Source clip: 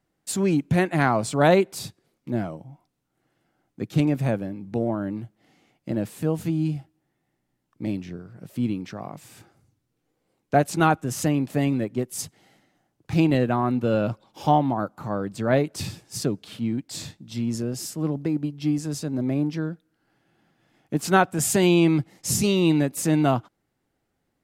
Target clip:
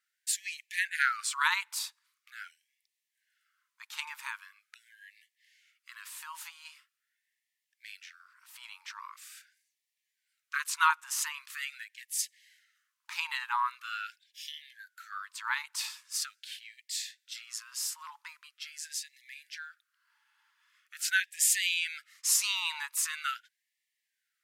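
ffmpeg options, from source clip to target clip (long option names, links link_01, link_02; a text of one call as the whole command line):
ffmpeg -i in.wav -af "afftfilt=real='re*gte(b*sr/1024,820*pow(1700/820,0.5+0.5*sin(2*PI*0.43*pts/sr)))':imag='im*gte(b*sr/1024,820*pow(1700/820,0.5+0.5*sin(2*PI*0.43*pts/sr)))':win_size=1024:overlap=0.75" out.wav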